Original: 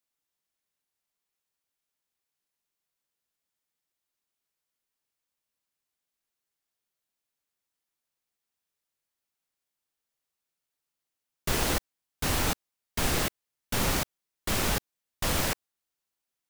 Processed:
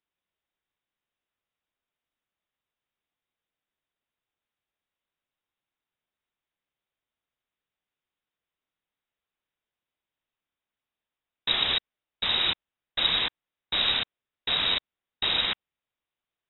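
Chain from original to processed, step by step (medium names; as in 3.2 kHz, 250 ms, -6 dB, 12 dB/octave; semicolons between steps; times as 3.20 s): frequency inversion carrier 3.8 kHz; trim +1.5 dB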